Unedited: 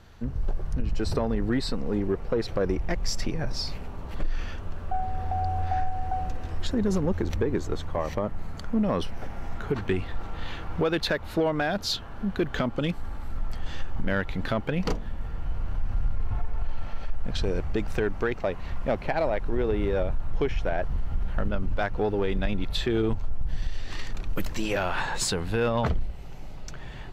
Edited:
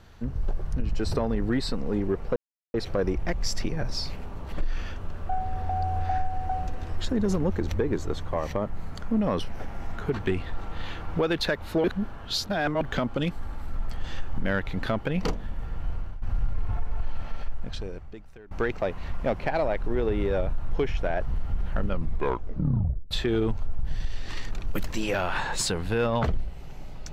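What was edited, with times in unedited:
0:02.36: splice in silence 0.38 s
0:11.46–0:12.43: reverse
0:15.54–0:15.84: fade out, to −15 dB
0:17.01–0:18.13: fade out quadratic, to −23 dB
0:21.47: tape stop 1.26 s

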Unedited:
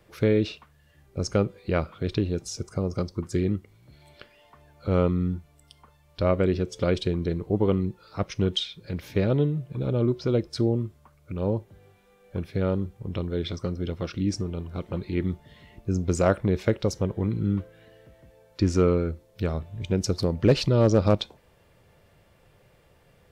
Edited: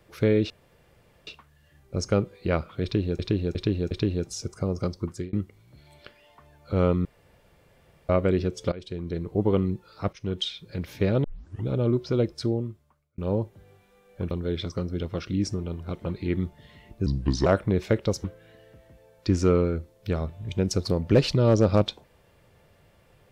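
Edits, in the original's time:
0:00.50: splice in room tone 0.77 s
0:02.06–0:02.42: repeat, 4 plays
0:03.22–0:03.48: fade out
0:05.20–0:06.24: fill with room tone
0:06.87–0:07.54: fade in, from −21 dB
0:08.28–0:08.70: fade in, from −13 dB
0:09.39: tape start 0.44 s
0:10.43–0:11.33: fade out
0:12.46–0:13.18: remove
0:15.93–0:16.23: play speed 75%
0:17.01–0:17.57: remove

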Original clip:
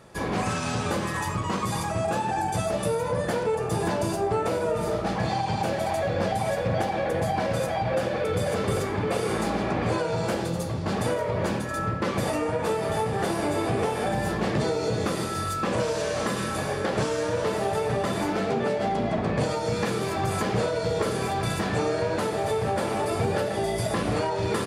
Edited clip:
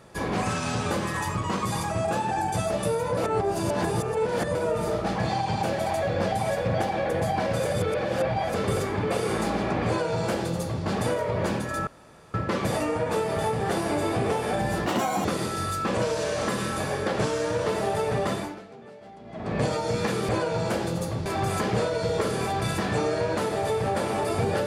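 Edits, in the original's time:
0:03.17–0:04.55: reverse
0:07.65–0:08.54: reverse
0:09.87–0:10.84: duplicate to 0:20.07
0:11.87: splice in room tone 0.47 s
0:14.39–0:15.03: play speed 165%
0:18.10–0:19.36: duck −20 dB, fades 0.38 s quadratic

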